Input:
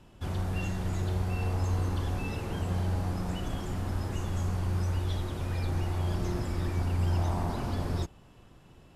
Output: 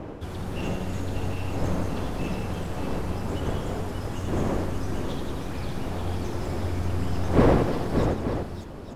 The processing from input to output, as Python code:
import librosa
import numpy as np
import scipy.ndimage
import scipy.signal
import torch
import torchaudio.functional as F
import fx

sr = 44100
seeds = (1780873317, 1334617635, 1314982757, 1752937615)

y = np.minimum(x, 2.0 * 10.0 ** (-31.0 / 20.0) - x)
y = fx.dmg_wind(y, sr, seeds[0], corner_hz=430.0, level_db=-32.0)
y = fx.echo_multitap(y, sr, ms=(81, 174, 319, 586, 881), db=(-6.5, -9.5, -12.0, -6.0, -10.5))